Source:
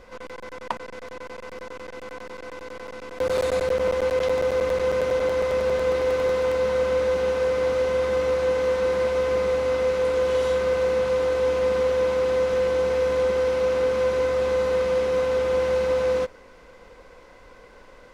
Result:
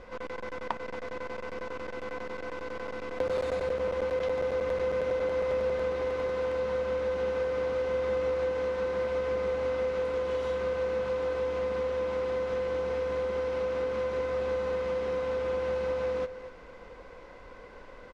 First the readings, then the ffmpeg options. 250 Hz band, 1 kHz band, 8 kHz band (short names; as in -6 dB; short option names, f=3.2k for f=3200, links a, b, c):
-5.5 dB, -6.0 dB, n/a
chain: -filter_complex "[0:a]aemphasis=mode=reproduction:type=50fm,acompressor=threshold=-27dB:ratio=6,asplit=2[a][b];[b]aecho=0:1:235:0.2[c];[a][c]amix=inputs=2:normalize=0"